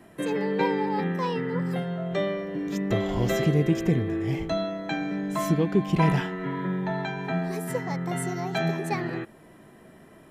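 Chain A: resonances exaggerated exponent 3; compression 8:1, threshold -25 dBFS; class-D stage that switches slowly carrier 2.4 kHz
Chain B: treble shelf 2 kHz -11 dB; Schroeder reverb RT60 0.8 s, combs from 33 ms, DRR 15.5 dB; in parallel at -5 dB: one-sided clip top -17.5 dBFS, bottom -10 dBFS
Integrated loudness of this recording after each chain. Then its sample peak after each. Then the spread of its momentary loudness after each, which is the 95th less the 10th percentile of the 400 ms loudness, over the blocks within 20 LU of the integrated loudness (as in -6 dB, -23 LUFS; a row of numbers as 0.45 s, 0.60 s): -30.5 LUFS, -24.0 LUFS; -17.0 dBFS, -6.0 dBFS; 3 LU, 8 LU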